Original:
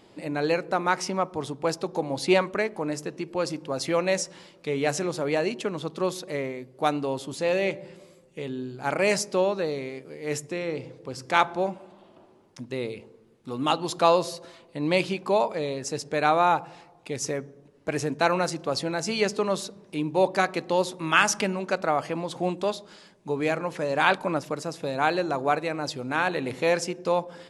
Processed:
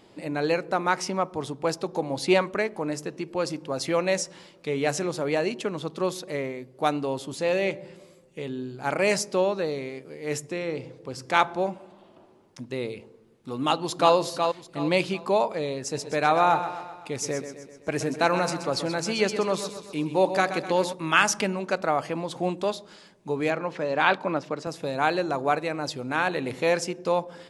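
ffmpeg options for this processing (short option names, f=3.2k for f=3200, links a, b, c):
-filter_complex "[0:a]asplit=2[a][b];[b]afade=t=in:st=13.62:d=0.01,afade=t=out:st=14.14:d=0.01,aecho=0:1:370|740|1110|1480:0.530884|0.159265|0.0477796|0.0143339[c];[a][c]amix=inputs=2:normalize=0,asplit=3[d][e][f];[d]afade=t=out:st=15.93:d=0.02[g];[e]aecho=1:1:127|254|381|508|635|762:0.299|0.161|0.0871|0.047|0.0254|0.0137,afade=t=in:st=15.93:d=0.02,afade=t=out:st=20.92:d=0.02[h];[f]afade=t=in:st=20.92:d=0.02[i];[g][h][i]amix=inputs=3:normalize=0,asettb=1/sr,asplit=3[j][k][l];[j]atrim=end=23.504[m];[k]atrim=start=23.5:end=24.67,asetpts=PTS-STARTPTS,afade=t=in:d=0.004:c=qsin,afade=t=out:st=1.166:d=0.004:c=qsin,highpass=140,lowpass=4.8k[n];[l]atrim=start=24.666[o];[m][n]acrossfade=d=0.004:c1=hsin:c2=qsin[p];[p][o]acrossfade=d=0.004:c1=qsin:c2=hsin"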